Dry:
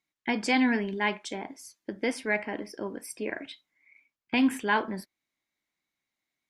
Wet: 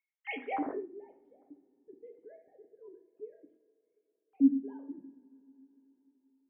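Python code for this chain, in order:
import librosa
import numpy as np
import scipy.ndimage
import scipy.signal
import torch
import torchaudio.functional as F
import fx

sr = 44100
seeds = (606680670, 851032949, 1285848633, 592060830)

y = fx.sine_speech(x, sr)
y = fx.rev_double_slope(y, sr, seeds[0], early_s=0.56, late_s=4.2, knee_db=-21, drr_db=4.0)
y = fx.filter_sweep_lowpass(y, sr, from_hz=2900.0, to_hz=230.0, start_s=0.35, end_s=0.89, q=1.6)
y = y * librosa.db_to_amplitude(-9.0)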